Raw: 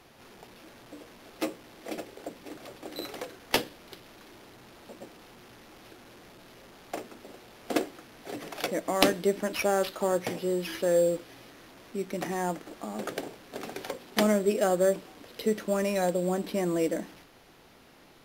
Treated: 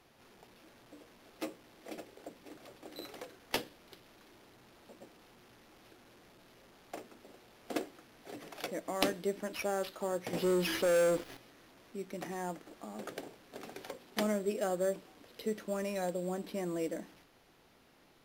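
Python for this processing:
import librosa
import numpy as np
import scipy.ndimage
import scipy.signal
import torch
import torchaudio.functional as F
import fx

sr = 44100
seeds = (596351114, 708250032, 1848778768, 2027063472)

y = fx.leveller(x, sr, passes=3, at=(10.33, 11.37))
y = y * librosa.db_to_amplitude(-8.5)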